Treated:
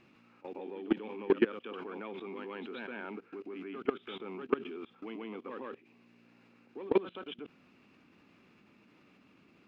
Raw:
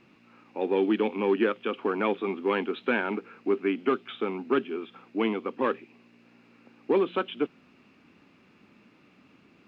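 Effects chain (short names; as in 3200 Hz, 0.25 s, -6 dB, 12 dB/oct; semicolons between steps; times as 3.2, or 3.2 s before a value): reverse echo 0.136 s -10 dB; level quantiser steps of 21 dB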